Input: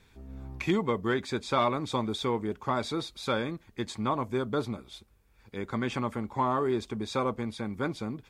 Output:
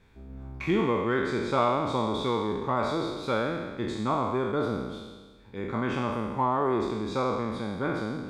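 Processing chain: spectral sustain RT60 1.41 s; treble shelf 3 kHz -11.5 dB

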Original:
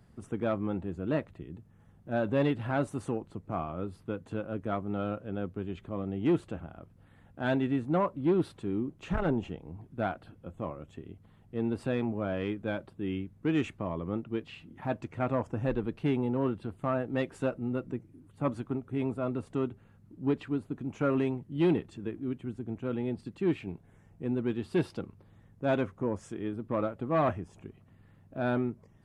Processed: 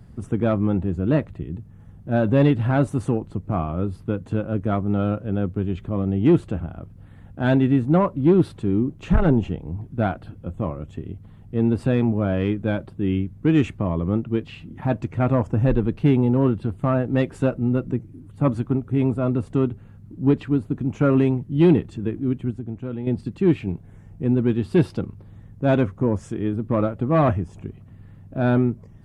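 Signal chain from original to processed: bass shelf 230 Hz +11 dB; 22.50–23.07 s: compression 2:1, threshold -38 dBFS, peak gain reduction 8 dB; trim +6 dB

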